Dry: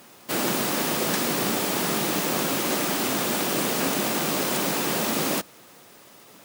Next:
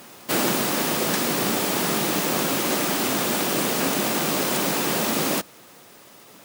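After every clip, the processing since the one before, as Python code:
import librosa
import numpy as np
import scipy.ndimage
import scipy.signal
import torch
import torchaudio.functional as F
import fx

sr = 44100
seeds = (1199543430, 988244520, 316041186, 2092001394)

y = fx.rider(x, sr, range_db=4, speed_s=0.5)
y = y * librosa.db_to_amplitude(2.0)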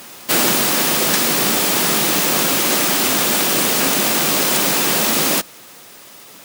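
y = fx.tilt_shelf(x, sr, db=-3.5, hz=1400.0)
y = y * librosa.db_to_amplitude(6.0)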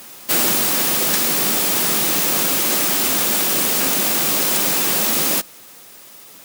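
y = fx.high_shelf(x, sr, hz=7200.0, db=6.0)
y = y * librosa.db_to_amplitude(-4.5)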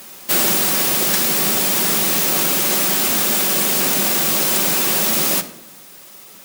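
y = fx.room_shoebox(x, sr, seeds[0], volume_m3=2300.0, walls='furnished', distance_m=1.1)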